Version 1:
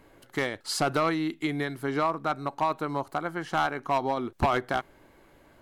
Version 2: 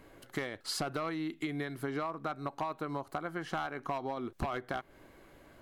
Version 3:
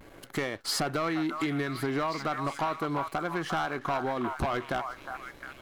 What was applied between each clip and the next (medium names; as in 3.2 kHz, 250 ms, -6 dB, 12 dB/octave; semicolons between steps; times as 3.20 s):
band-stop 890 Hz, Q 12; dynamic bell 7.7 kHz, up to -4 dB, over -50 dBFS, Q 0.87; compression, threshold -33 dBFS, peak gain reduction 12 dB
repeats whose band climbs or falls 356 ms, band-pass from 1.1 kHz, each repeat 0.7 oct, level -5 dB; vibrato 0.39 Hz 32 cents; waveshaping leveller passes 2